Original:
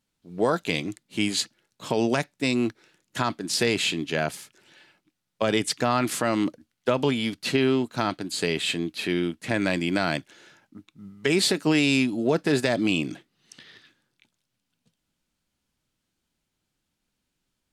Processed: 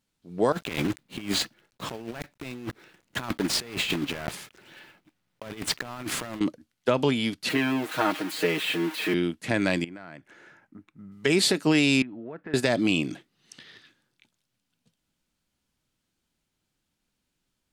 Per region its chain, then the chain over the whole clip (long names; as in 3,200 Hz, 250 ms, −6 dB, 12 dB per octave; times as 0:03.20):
0:00.52–0:06.41: one scale factor per block 3 bits + bass and treble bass +1 dB, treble −9 dB + compressor whose output falls as the input rises −30 dBFS, ratio −0.5
0:07.49–0:09.14: spike at every zero crossing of −15 dBFS + three-way crossover with the lows and the highs turned down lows −13 dB, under 230 Hz, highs −23 dB, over 2,800 Hz + comb filter 6.4 ms, depth 99%
0:09.84–0:11.12: high shelf with overshoot 2,600 Hz −9 dB, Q 1.5 + downward compressor 5 to 1, threshold −40 dBFS
0:12.02–0:12.54: downward compressor 3 to 1, threshold −29 dBFS + transistor ladder low-pass 2,200 Hz, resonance 40%
whole clip: no processing